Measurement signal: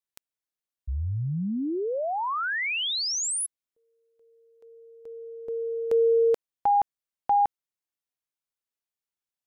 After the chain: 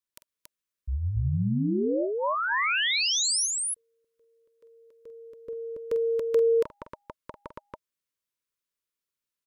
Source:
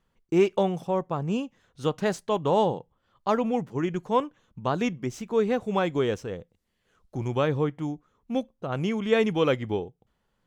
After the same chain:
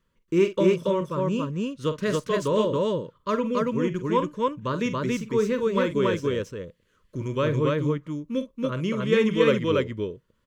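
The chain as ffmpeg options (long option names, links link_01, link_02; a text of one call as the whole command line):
ffmpeg -i in.wav -filter_complex "[0:a]asuperstop=centerf=760:order=12:qfactor=2.6,asplit=2[link_01][link_02];[link_02]aecho=0:1:46.65|279.9:0.282|0.891[link_03];[link_01][link_03]amix=inputs=2:normalize=0" out.wav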